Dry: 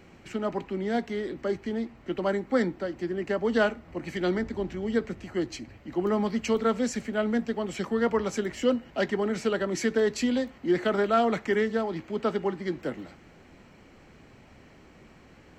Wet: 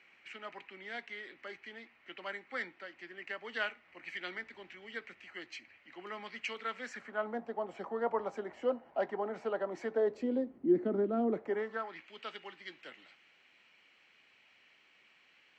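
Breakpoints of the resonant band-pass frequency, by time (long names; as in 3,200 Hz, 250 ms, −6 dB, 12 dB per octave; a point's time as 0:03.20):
resonant band-pass, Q 2.1
0:06.71 2,300 Hz
0:07.37 780 Hz
0:09.88 780 Hz
0:10.58 290 Hz
0:11.26 290 Hz
0:11.55 730 Hz
0:12.08 2,800 Hz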